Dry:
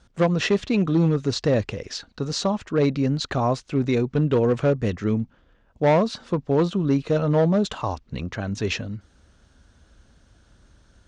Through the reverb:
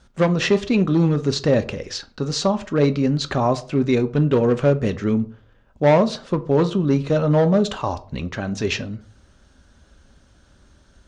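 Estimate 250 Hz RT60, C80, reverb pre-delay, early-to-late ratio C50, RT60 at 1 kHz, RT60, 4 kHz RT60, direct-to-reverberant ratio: 0.40 s, 22.5 dB, 3 ms, 18.5 dB, 0.40 s, 0.45 s, 0.25 s, 9.5 dB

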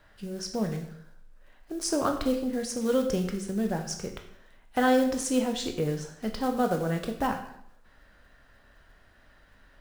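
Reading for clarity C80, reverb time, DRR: 11.0 dB, 0.70 s, 4.0 dB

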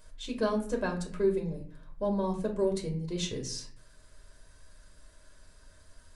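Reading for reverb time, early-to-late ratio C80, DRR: 0.50 s, 14.0 dB, 0.5 dB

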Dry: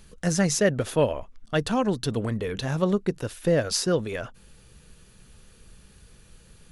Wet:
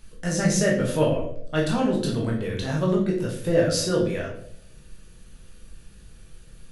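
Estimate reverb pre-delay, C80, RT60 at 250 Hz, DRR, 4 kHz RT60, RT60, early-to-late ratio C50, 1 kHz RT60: 12 ms, 9.0 dB, 0.80 s, -2.5 dB, 0.45 s, 0.70 s, 5.0 dB, 0.55 s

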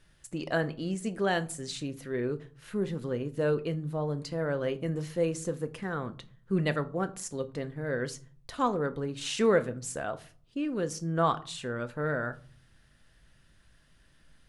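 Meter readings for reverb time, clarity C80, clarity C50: 0.45 s, 23.5 dB, 18.5 dB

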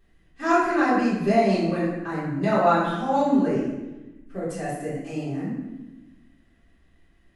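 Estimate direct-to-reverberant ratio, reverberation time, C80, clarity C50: -11.5 dB, 1.1 s, 3.0 dB, 0.5 dB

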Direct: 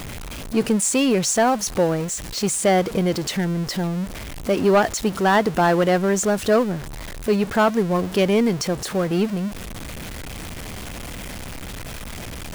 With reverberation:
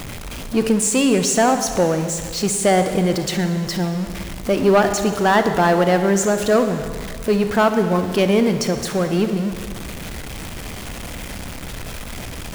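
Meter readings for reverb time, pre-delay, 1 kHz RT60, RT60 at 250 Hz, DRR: 1.9 s, 36 ms, 1.9 s, 1.9 s, 7.5 dB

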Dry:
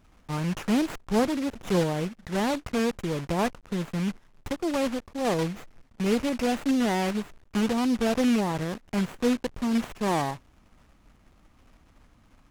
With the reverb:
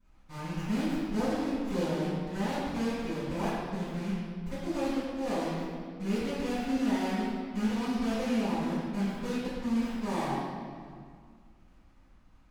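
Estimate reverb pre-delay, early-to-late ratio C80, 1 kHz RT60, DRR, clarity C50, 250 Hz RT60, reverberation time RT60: 4 ms, -0.5 dB, 2.0 s, -18.5 dB, -2.5 dB, 2.5 s, 2.0 s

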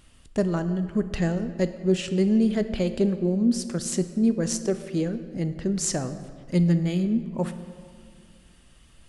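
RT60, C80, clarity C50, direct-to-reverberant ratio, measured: 2.1 s, 12.5 dB, 11.5 dB, 10.0 dB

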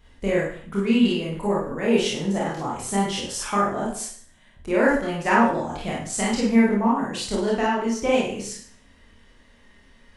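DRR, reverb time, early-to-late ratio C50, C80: -5.5 dB, 0.50 s, 2.0 dB, 7.0 dB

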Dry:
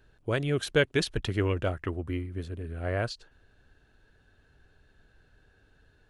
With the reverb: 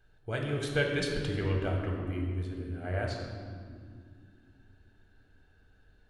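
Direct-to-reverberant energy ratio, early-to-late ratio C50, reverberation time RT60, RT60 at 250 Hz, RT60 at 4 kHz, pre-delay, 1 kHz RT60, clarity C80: 0.0 dB, 2.5 dB, 2.2 s, 3.8 s, 1.4 s, 3 ms, 1.9 s, 4.0 dB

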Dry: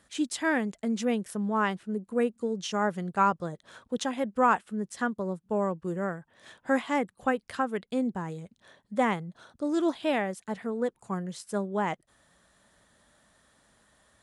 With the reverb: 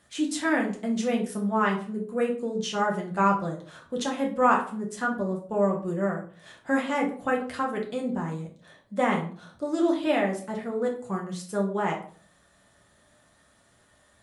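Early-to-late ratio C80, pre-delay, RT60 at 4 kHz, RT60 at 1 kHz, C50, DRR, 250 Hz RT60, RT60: 14.0 dB, 6 ms, 0.30 s, 0.45 s, 8.5 dB, -1.0 dB, 0.55 s, 0.45 s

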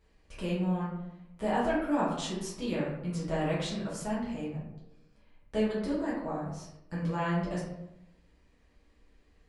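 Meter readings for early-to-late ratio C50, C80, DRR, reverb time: 2.0 dB, 5.5 dB, -8.5 dB, 0.90 s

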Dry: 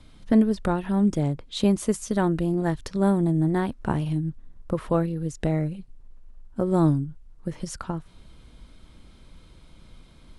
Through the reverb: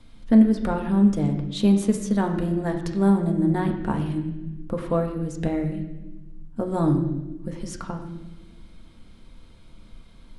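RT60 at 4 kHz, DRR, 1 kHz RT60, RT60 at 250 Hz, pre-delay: 1.0 s, 2.5 dB, 0.90 s, 2.0 s, 4 ms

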